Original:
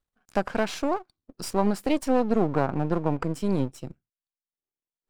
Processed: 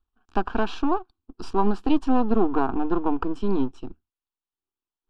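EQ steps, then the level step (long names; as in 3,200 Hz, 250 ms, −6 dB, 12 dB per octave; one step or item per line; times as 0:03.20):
low-pass with resonance 2,700 Hz, resonance Q 1.9
low-shelf EQ 120 Hz +8 dB
phaser with its sweep stopped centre 560 Hz, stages 6
+3.5 dB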